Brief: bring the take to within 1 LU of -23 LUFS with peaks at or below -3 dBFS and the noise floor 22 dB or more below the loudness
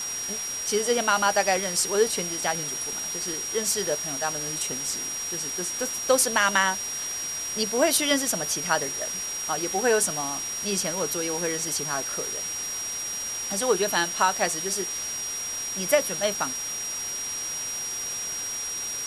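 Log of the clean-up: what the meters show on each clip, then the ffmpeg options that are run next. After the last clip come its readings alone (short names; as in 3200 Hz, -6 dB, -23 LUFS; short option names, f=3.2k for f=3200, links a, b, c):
steady tone 5700 Hz; tone level -30 dBFS; noise floor -32 dBFS; noise floor target -48 dBFS; loudness -25.5 LUFS; peak -7.0 dBFS; loudness target -23.0 LUFS
-> -af "bandreject=f=5.7k:w=30"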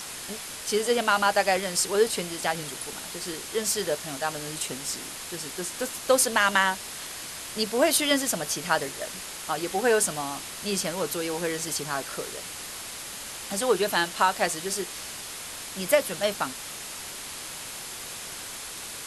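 steady tone none; noise floor -38 dBFS; noise floor target -50 dBFS
-> -af "afftdn=nr=12:nf=-38"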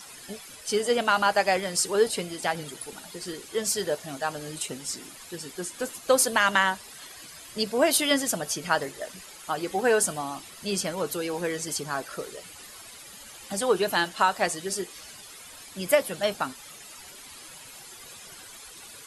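noise floor -46 dBFS; noise floor target -49 dBFS
-> -af "afftdn=nr=6:nf=-46"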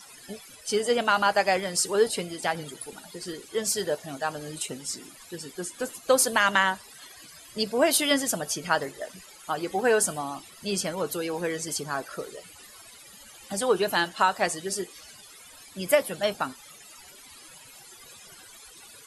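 noise floor -50 dBFS; loudness -26.5 LUFS; peak -7.5 dBFS; loudness target -23.0 LUFS
-> -af "volume=3.5dB"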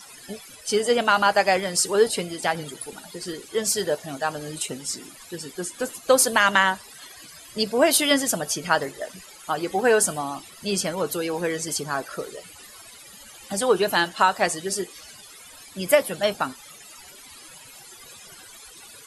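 loudness -23.0 LUFS; peak -4.0 dBFS; noise floor -46 dBFS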